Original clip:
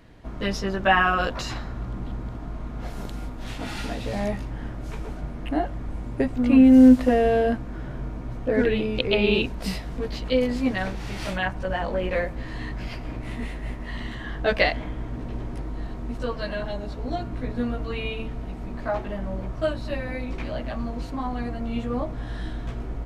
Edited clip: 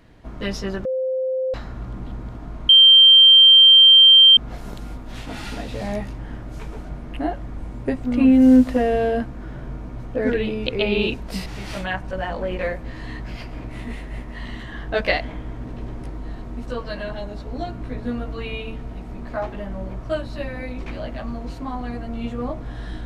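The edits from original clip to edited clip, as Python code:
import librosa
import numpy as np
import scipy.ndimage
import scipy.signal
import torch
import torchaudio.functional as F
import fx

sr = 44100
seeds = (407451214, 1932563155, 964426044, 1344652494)

y = fx.edit(x, sr, fx.bleep(start_s=0.85, length_s=0.69, hz=520.0, db=-20.0),
    fx.insert_tone(at_s=2.69, length_s=1.68, hz=3150.0, db=-6.5),
    fx.cut(start_s=9.78, length_s=1.2), tone=tone)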